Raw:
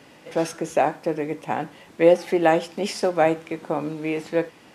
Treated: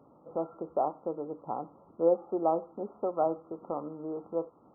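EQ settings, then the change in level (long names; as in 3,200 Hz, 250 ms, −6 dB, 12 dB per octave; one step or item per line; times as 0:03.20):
dynamic equaliser 150 Hz, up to −7 dB, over −37 dBFS, Q 0.7
linear-phase brick-wall low-pass 1,400 Hz
−8.0 dB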